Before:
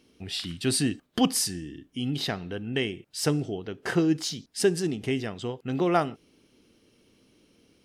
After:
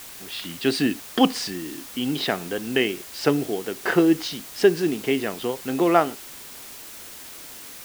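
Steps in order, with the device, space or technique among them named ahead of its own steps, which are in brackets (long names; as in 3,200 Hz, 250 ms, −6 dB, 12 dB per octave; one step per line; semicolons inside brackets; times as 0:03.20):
dictaphone (band-pass filter 260–3,400 Hz; automatic gain control gain up to 8 dB; tape wow and flutter; white noise bed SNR 16 dB)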